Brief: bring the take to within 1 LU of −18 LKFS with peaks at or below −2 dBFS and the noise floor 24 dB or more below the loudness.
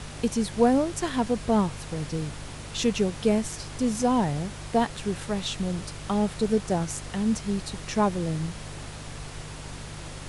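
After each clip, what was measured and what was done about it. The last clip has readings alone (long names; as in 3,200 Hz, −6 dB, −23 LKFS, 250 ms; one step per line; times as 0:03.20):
mains hum 50 Hz; hum harmonics up to 150 Hz; level of the hum −39 dBFS; background noise floor −40 dBFS; target noise floor −51 dBFS; integrated loudness −27.0 LKFS; sample peak −8.5 dBFS; target loudness −18.0 LKFS
→ hum removal 50 Hz, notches 3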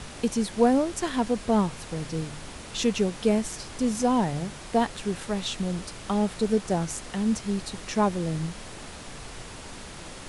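mains hum none found; background noise floor −42 dBFS; target noise floor −51 dBFS
→ noise reduction from a noise print 9 dB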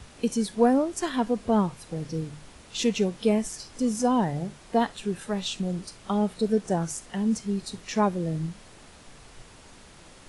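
background noise floor −51 dBFS; target noise floor −52 dBFS
→ noise reduction from a noise print 6 dB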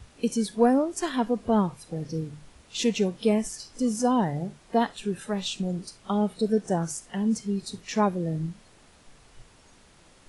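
background noise floor −56 dBFS; integrated loudness −27.5 LKFS; sample peak −9.0 dBFS; target loudness −18.0 LKFS
→ level +9.5 dB
brickwall limiter −2 dBFS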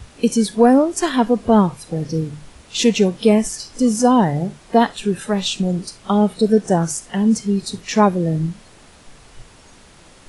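integrated loudness −18.0 LKFS; sample peak −2.0 dBFS; background noise floor −47 dBFS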